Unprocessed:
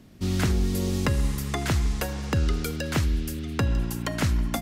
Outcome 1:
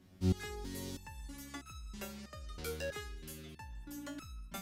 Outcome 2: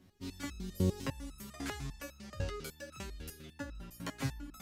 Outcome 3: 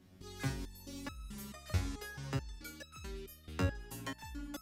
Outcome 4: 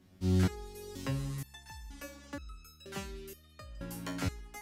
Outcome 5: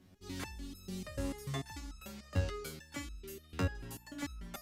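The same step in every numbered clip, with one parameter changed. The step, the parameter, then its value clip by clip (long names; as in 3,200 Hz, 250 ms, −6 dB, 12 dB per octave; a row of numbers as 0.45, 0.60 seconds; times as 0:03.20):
step-sequenced resonator, speed: 3.1, 10, 4.6, 2.1, 6.8 Hertz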